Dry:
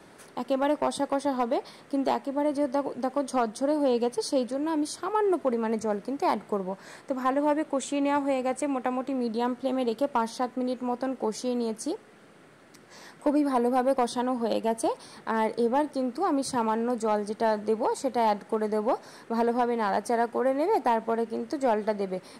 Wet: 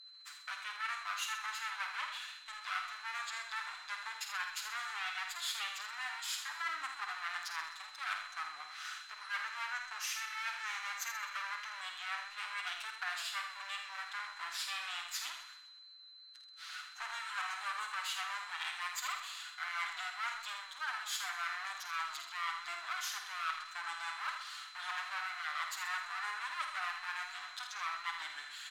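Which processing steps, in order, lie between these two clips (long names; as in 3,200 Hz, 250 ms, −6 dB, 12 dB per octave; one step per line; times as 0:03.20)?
lower of the sound and its delayed copy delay 5.3 ms
noise gate −50 dBFS, range −22 dB
inverse Chebyshev high-pass filter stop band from 680 Hz, stop band 50 dB
high-shelf EQ 4,900 Hz −8 dB
reversed playback
downward compressor 6 to 1, threshold −44 dBFS, peak gain reduction 12 dB
reversed playback
steady tone 5,200 Hz −61 dBFS
speed change −22%
ambience of single reflections 51 ms −8 dB, 80 ms −8.5 dB
on a send at −14 dB: convolution reverb RT60 0.50 s, pre-delay 4 ms
on the sum: feedback echo with a swinging delay time 128 ms, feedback 39%, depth 93 cents, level −12 dB
level +7.5 dB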